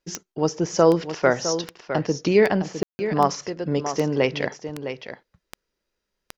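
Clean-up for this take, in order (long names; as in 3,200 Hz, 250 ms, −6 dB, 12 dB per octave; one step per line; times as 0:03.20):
click removal
ambience match 0:02.83–0:02.99
echo removal 659 ms −10 dB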